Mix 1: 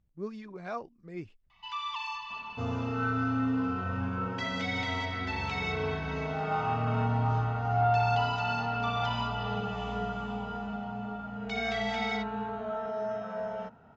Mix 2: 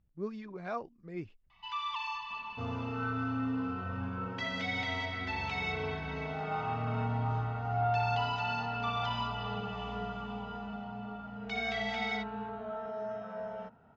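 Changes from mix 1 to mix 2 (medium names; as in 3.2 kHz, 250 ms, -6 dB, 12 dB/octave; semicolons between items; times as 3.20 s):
second sound -4.5 dB; master: add distance through air 74 m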